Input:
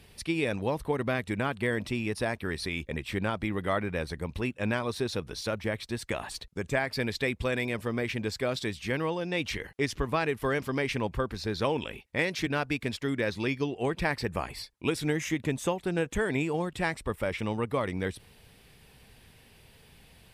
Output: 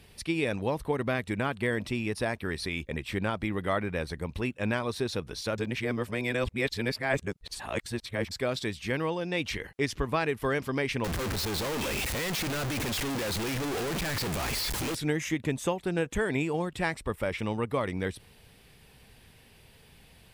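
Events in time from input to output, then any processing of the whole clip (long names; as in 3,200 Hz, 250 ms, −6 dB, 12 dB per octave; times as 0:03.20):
0:05.58–0:08.31: reverse
0:11.04–0:14.95: sign of each sample alone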